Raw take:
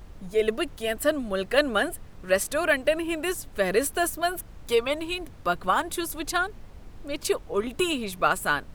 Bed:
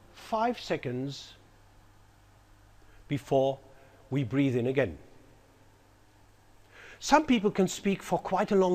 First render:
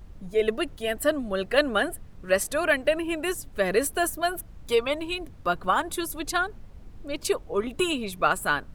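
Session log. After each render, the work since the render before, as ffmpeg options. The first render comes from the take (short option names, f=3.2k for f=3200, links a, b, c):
-af "afftdn=nr=6:nf=-45"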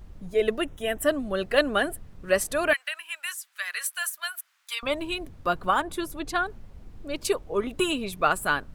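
-filter_complex "[0:a]asettb=1/sr,asplit=3[a][b][c];[a]atrim=end=0.604[d];[b]atrim=start=0.6:end=1.07,asetpts=PTS-STARTPTS,afade=t=in:d=0.004:c=qsin,afade=t=out:st=0.466:d=0.004:c=qsin,asuperstop=centerf=4500:order=4:qfactor=3[e];[c]atrim=start=1.066[f];[d][e]acrossfade=d=0.004:c1=hsin:c2=qsin[g];[g][f]acrossfade=d=0.004:c1=qsin:c2=hsin,asettb=1/sr,asplit=3[h][i][j];[h]atrim=end=2.734[k];[i]atrim=start=2.73:end=4.83,asetpts=PTS-STARTPTS,afade=t=in:d=0.004:c=qsin,afade=t=out:st=2.096:d=0.004:c=qsin,highpass=f=1.3k:w=0.5412,highpass=f=1.3k:w=1.3066[l];[j]atrim=start=4.826[m];[k][l]acrossfade=d=0.004:c1=hsin:c2=qsin[n];[n][m]acrossfade=d=0.004:c1=qsin:c2=hsin,asettb=1/sr,asplit=3[o][p][q];[o]atrim=end=5.814[r];[p]atrim=start=5.81:end=6.46,asetpts=PTS-STARTPTS,afade=t=in:d=0.004:c=qsin,afade=t=out:st=0.646:d=0.004:c=qsin,highshelf=f=4.4k:g=-9[s];[q]atrim=start=6.456[t];[r][s]acrossfade=d=0.004:c1=hsin:c2=qsin[u];[u][t]acrossfade=d=0.004:c1=qsin:c2=hsin"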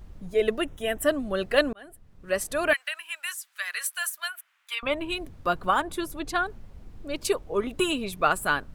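-filter_complex "[0:a]asettb=1/sr,asplit=3[a][b][c];[a]atrim=end=4.284[d];[b]atrim=start=4.28:end=5.1,asetpts=PTS-STARTPTS,afade=t=in:d=0.004:c=qsin,afade=t=out:st=0.816:d=0.004:c=qsin,highshelf=f=3.6k:t=q:w=1.5:g=-6.5[e];[c]atrim=start=5.096[f];[d][e]acrossfade=d=0.004:c1=hsin:c2=qsin[g];[g][f]acrossfade=d=0.004:c1=qsin:c2=hsin,asplit=2[h][i];[h]atrim=end=1.73,asetpts=PTS-STARTPTS,afade=t=out:st=1.726:d=0.004:c=hsin[j];[i]atrim=start=1.73,asetpts=PTS-STARTPTS,afade=t=in:d=0.98[k];[j][k]concat=n=2:v=0:a=1"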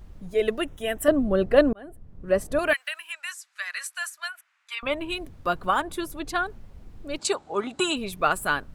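-filter_complex "[0:a]asettb=1/sr,asplit=3[a][b][c];[a]atrim=end=1.084[d];[b]atrim=start=1.08:end=2.59,asetpts=PTS-STARTPTS,afade=t=in:d=0.004:c=qsin,afade=t=out:st=1.506:d=0.004:c=qsin,tiltshelf=f=1.2k:g=8.5[e];[c]atrim=start=2.586[f];[d][e]acrossfade=d=0.004:c1=hsin:c2=qsin[g];[g][f]acrossfade=d=0.004:c1=qsin:c2=hsin,asettb=1/sr,asplit=3[h][i][j];[h]atrim=end=3.124[k];[i]atrim=start=3.12:end=4.81,asetpts=PTS-STARTPTS,afade=t=in:d=0.004:c=qsin,afade=t=out:st=1.686:d=0.004:c=qsin,highpass=290,equalizer=f=440:t=q:w=4:g=-10,equalizer=f=3.2k:t=q:w=4:g=-5,equalizer=f=9.4k:t=q:w=4:g=-7,lowpass=f=10k:w=0.5412,lowpass=f=10k:w=1.3066[l];[j]atrim=start=4.806[m];[k][l]acrossfade=d=0.004:c1=hsin:c2=qsin[n];[n][m]acrossfade=d=0.004:c1=qsin:c2=hsin,asplit=3[o][p][q];[o]afade=t=out:st=7.18:d=0.02[r];[p]highpass=160,equalizer=f=480:t=q:w=4:g=-6,equalizer=f=810:t=q:w=4:g=10,equalizer=f=1.4k:t=q:w=4:g=6,equalizer=f=4.1k:t=q:w=4:g=7,equalizer=f=7.5k:t=q:w=4:g=8,lowpass=f=9.1k:w=0.5412,lowpass=f=9.1k:w=1.3066,afade=t=in:st=7.18:d=0.02,afade=t=out:st=7.95:d=0.02[s];[q]afade=t=in:st=7.95:d=0.02[t];[r][s][t]amix=inputs=3:normalize=0"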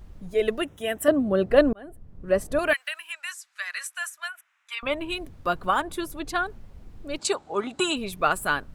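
-filter_complex "[0:a]asettb=1/sr,asplit=3[a][b][c];[a]atrim=end=0.624[d];[b]atrim=start=0.62:end=1.5,asetpts=PTS-STARTPTS,afade=t=in:d=0.004:c=qsin,afade=t=out:st=0.876:d=0.004:c=qsin,highpass=87[e];[c]atrim=start=1.496[f];[d][e]acrossfade=d=0.004:c1=hsin:c2=qsin[g];[g][f]acrossfade=d=0.004:c1=qsin:c2=hsin,asettb=1/sr,asplit=3[h][i][j];[h]atrim=end=3.834[k];[i]atrim=start=3.83:end=4.73,asetpts=PTS-STARTPTS,afade=t=in:d=0.004:c=qsin,afade=t=out:st=0.896:d=0.004:c=qsin,equalizer=f=4.5k:t=o:w=0.26:g=-9[l];[j]atrim=start=4.726[m];[k][l]acrossfade=d=0.004:c1=hsin:c2=qsin[n];[n][m]acrossfade=d=0.004:c1=qsin:c2=hsin"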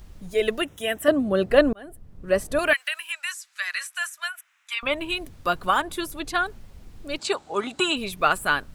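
-filter_complex "[0:a]acrossover=split=3500[a][b];[b]acompressor=threshold=-43dB:ratio=4:attack=1:release=60[c];[a][c]amix=inputs=2:normalize=0,highshelf=f=2.2k:g=9.5"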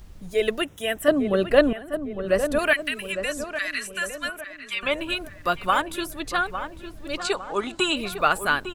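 -filter_complex "[0:a]asplit=2[a][b];[b]adelay=855,lowpass=f=2k:p=1,volume=-9dB,asplit=2[c][d];[d]adelay=855,lowpass=f=2k:p=1,volume=0.5,asplit=2[e][f];[f]adelay=855,lowpass=f=2k:p=1,volume=0.5,asplit=2[g][h];[h]adelay=855,lowpass=f=2k:p=1,volume=0.5,asplit=2[i][j];[j]adelay=855,lowpass=f=2k:p=1,volume=0.5,asplit=2[k][l];[l]adelay=855,lowpass=f=2k:p=1,volume=0.5[m];[a][c][e][g][i][k][m]amix=inputs=7:normalize=0"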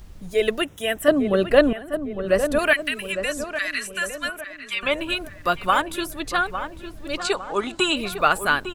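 -af "volume=2dB,alimiter=limit=-2dB:level=0:latency=1"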